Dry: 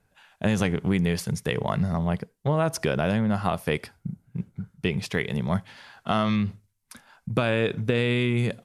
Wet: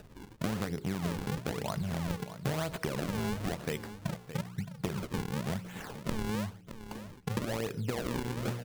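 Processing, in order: de-hum 59.95 Hz, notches 9; decimation with a swept rate 40×, swing 160% 1 Hz; compression 8:1, threshold -34 dBFS, peak gain reduction 15 dB; on a send: delay 618 ms -12 dB; on the sum: upward compressor, threshold -45 dBFS; trim +3 dB

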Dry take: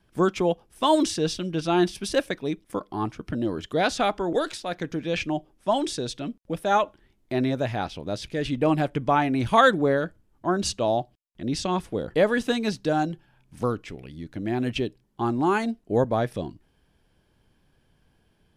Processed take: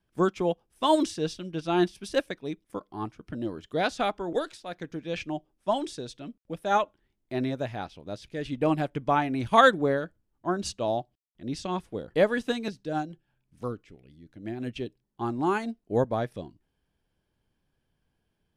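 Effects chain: 12.68–14.86 s: rotary cabinet horn 6 Hz; upward expansion 1.5:1, over -37 dBFS

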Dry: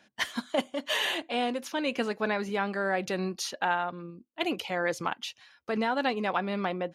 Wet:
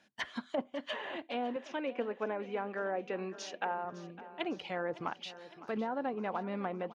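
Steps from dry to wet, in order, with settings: 1.56–3.85 s: cabinet simulation 250–7300 Hz, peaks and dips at 490 Hz +4 dB, 2.5 kHz +5 dB, 4.3 kHz -8 dB; low-pass that closes with the level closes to 990 Hz, closed at -24 dBFS; feedback delay 558 ms, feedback 58%, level -16 dB; trim -6 dB

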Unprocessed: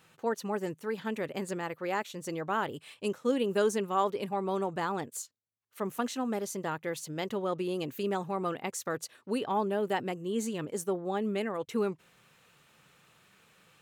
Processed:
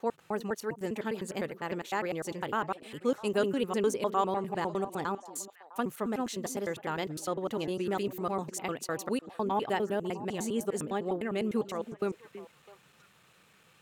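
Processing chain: slices played last to first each 101 ms, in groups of 3; repeats whose band climbs or falls 327 ms, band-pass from 290 Hz, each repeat 1.4 oct, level -11 dB

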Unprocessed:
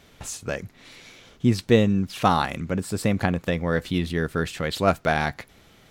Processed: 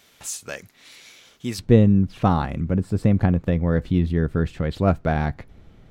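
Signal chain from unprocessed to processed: tilt EQ +2.5 dB/octave, from 1.58 s -3.5 dB/octave; trim -3.5 dB

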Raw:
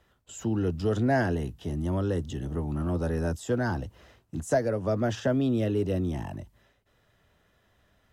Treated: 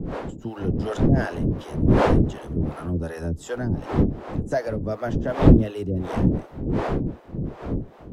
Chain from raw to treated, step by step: wind noise 290 Hz -23 dBFS; harmonic tremolo 2.7 Hz, depth 100%, crossover 470 Hz; trim +5 dB

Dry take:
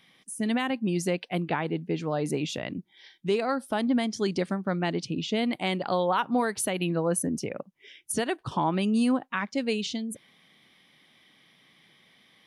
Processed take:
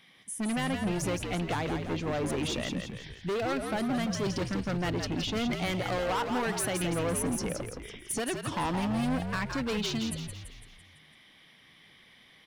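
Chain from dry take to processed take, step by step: hard clipper -28.5 dBFS, distortion -7 dB; peaking EQ 2 kHz +2 dB 1.6 oct; on a send: frequency-shifting echo 168 ms, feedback 52%, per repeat -63 Hz, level -6 dB

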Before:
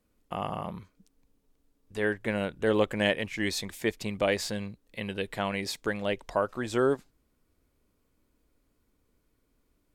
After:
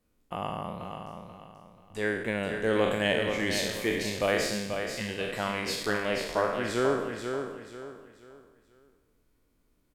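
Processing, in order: spectral sustain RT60 0.94 s; feedback delay 485 ms, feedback 33%, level -6.5 dB; trim -2.5 dB

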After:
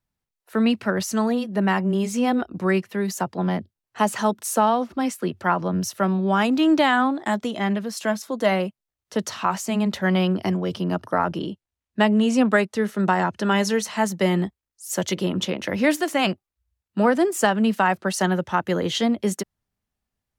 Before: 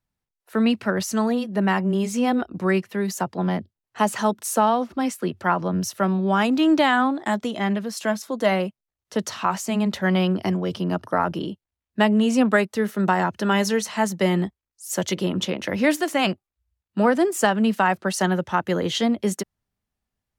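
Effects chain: 11.17–13.69 s: low-pass 11 kHz 12 dB/octave

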